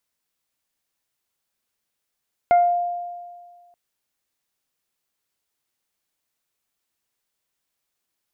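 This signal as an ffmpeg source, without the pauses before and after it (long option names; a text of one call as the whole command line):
ffmpeg -f lavfi -i "aevalsrc='0.299*pow(10,-3*t/1.75)*sin(2*PI*702*t)+0.0398*pow(10,-3*t/0.37)*sin(2*PI*1404*t)+0.0422*pow(10,-3*t/0.33)*sin(2*PI*2106*t)':duration=1.23:sample_rate=44100" out.wav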